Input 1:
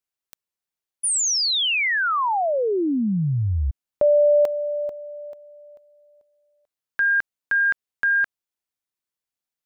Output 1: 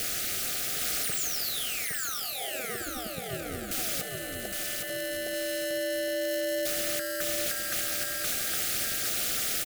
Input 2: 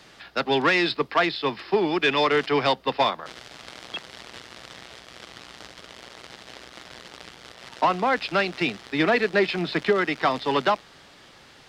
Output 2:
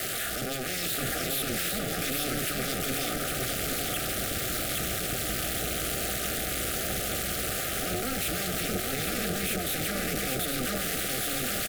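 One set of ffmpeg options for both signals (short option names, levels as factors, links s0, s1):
-filter_complex "[0:a]aeval=exprs='val(0)+0.5*0.0668*sgn(val(0))':c=same,bandreject=f=159.3:t=h:w=4,bandreject=f=318.6:t=h:w=4,bandreject=f=477.9:t=h:w=4,bandreject=f=637.2:t=h:w=4,bandreject=f=796.5:t=h:w=4,afftfilt=real='re*lt(hypot(re,im),0.562)':imag='im*lt(hypot(re,im),0.562)':win_size=1024:overlap=0.75,equalizer=f=2600:t=o:w=2:g=-7.5,acrossover=split=300|3600[s0][s1][s2];[s1]acompressor=threshold=0.0282:ratio=5:attack=4.9:release=57:knee=2.83:detection=peak[s3];[s0][s3][s2]amix=inputs=3:normalize=0,crystalizer=i=2.5:c=0,acrusher=bits=6:mode=log:mix=0:aa=0.000001,aeval=exprs='0.0562*(abs(mod(val(0)/0.0562+3,4)-2)-1)':c=same,acontrast=23,tremolo=f=260:d=0.919,asuperstop=centerf=970:order=20:qfactor=2.5,aecho=1:1:813|1626|2439|3252|4065:0.668|0.234|0.0819|0.0287|0.01,volume=0.75"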